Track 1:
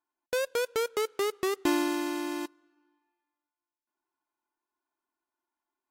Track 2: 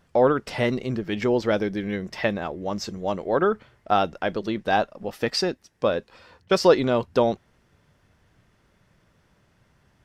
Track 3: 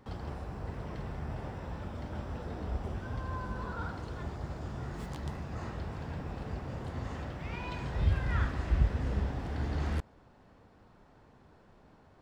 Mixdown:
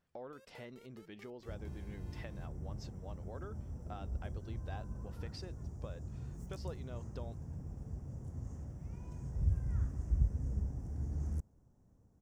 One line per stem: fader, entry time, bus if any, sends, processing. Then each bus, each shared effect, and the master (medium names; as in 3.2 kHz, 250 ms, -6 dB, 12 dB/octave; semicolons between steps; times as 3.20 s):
-20.0 dB, 0.00 s, bus A, no send, compression, threshold -35 dBFS, peak gain reduction 12.5 dB
-19.0 dB, 0.00 s, bus A, no send, none
-4.0 dB, 1.40 s, no bus, no send, FFT filter 130 Hz 0 dB, 4.1 kHz -29 dB, 5.9 kHz -1 dB
bus A: 0.0 dB, compression 2.5:1, threshold -50 dBFS, peak gain reduction 13.5 dB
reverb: none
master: none